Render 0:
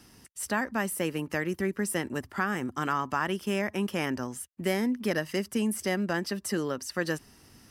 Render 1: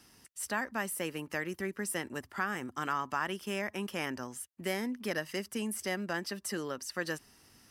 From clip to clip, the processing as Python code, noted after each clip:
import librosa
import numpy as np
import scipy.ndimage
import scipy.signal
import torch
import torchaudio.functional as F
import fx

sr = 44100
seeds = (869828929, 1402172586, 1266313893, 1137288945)

y = fx.low_shelf(x, sr, hz=480.0, db=-6.5)
y = F.gain(torch.from_numpy(y), -3.0).numpy()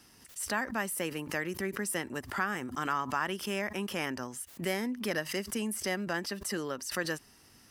y = fx.pre_swell(x, sr, db_per_s=120.0)
y = F.gain(torch.from_numpy(y), 1.5).numpy()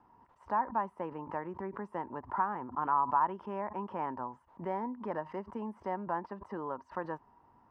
y = fx.lowpass_res(x, sr, hz=950.0, q=8.4)
y = F.gain(torch.from_numpy(y), -6.0).numpy()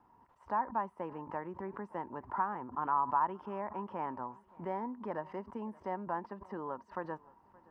y = fx.echo_feedback(x, sr, ms=572, feedback_pct=44, wet_db=-24.0)
y = F.gain(torch.from_numpy(y), -2.0).numpy()